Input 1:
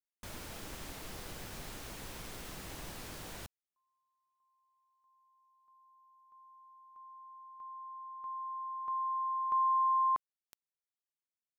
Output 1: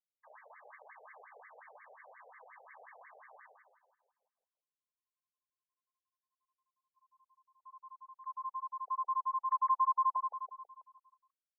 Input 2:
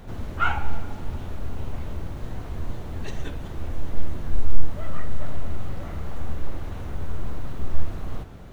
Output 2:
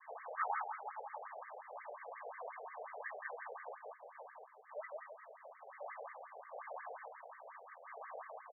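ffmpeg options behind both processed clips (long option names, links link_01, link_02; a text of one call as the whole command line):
ffmpeg -i in.wav -filter_complex "[0:a]agate=range=-33dB:threshold=-42dB:ratio=3:release=113:detection=peak,asuperstop=centerf=1400:order=4:qfactor=6.5,acompressor=threshold=-24dB:ratio=10:attack=0.16:release=30:knee=6,asplit=2[link_01][link_02];[link_02]adelay=163,lowpass=frequency=1800:poles=1,volume=-3.5dB,asplit=2[link_03][link_04];[link_04]adelay=163,lowpass=frequency=1800:poles=1,volume=0.54,asplit=2[link_05][link_06];[link_06]adelay=163,lowpass=frequency=1800:poles=1,volume=0.54,asplit=2[link_07][link_08];[link_08]adelay=163,lowpass=frequency=1800:poles=1,volume=0.54,asplit=2[link_09][link_10];[link_10]adelay=163,lowpass=frequency=1800:poles=1,volume=0.54,asplit=2[link_11][link_12];[link_12]adelay=163,lowpass=frequency=1800:poles=1,volume=0.54,asplit=2[link_13][link_14];[link_14]adelay=163,lowpass=frequency=1800:poles=1,volume=0.54[link_15];[link_01][link_03][link_05][link_07][link_09][link_11][link_13][link_15]amix=inputs=8:normalize=0,alimiter=limit=-20dB:level=0:latency=1:release=68,highpass=430,highshelf=frequency=2100:gain=9,afftfilt=real='re*between(b*sr/1024,570*pow(1600/570,0.5+0.5*sin(2*PI*5.6*pts/sr))/1.41,570*pow(1600/570,0.5+0.5*sin(2*PI*5.6*pts/sr))*1.41)':imag='im*between(b*sr/1024,570*pow(1600/570,0.5+0.5*sin(2*PI*5.6*pts/sr))/1.41,570*pow(1600/570,0.5+0.5*sin(2*PI*5.6*pts/sr))*1.41)':win_size=1024:overlap=0.75,volume=1dB" out.wav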